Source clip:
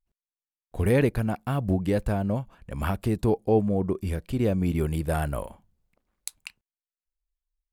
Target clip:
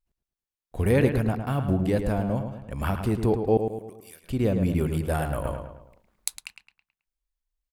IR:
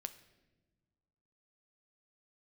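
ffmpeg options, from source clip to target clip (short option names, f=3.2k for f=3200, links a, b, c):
-filter_complex "[0:a]asettb=1/sr,asplit=3[a][b][c];[a]atrim=end=3.574[d];[b]atrim=start=3.57:end=4.24,asetpts=PTS-STARTPTS,afade=t=in:d=0.004:c=qsin,afade=t=out:st=0.666:d=0.004:c=qsin,aderivative[e];[c]atrim=start=4.236[f];[d][e]acrossfade=d=0.004:c1=hsin:c2=qsin[g];[g][f]acrossfade=d=0.004:c1=qsin:c2=hsin,asplit=2[h][i];[i]adelay=108,lowpass=f=3.4k:p=1,volume=-7dB,asplit=2[j][k];[k]adelay=108,lowpass=f=3.4k:p=1,volume=0.46,asplit=2[l][m];[m]adelay=108,lowpass=f=3.4k:p=1,volume=0.46,asplit=2[n][o];[o]adelay=108,lowpass=f=3.4k:p=1,volume=0.46,asplit=2[p][q];[q]adelay=108,lowpass=f=3.4k:p=1,volume=0.46[r];[h][j][l][n][p][r]amix=inputs=6:normalize=0,asettb=1/sr,asplit=3[s][t][u];[s]atrim=end=5.454[v];[t]atrim=start=5.45:end=6.4,asetpts=PTS-STARTPTS,afade=t=in:d=0.004:c=qsin,afade=t=out:st=0.946:d=0.004:c=qsin,acontrast=64[w];[u]atrim=start=6.396[x];[v][w]acrossfade=d=0.004:c1=hsin:c2=qsin[y];[y][x]acrossfade=d=0.004:c1=qsin:c2=hsin"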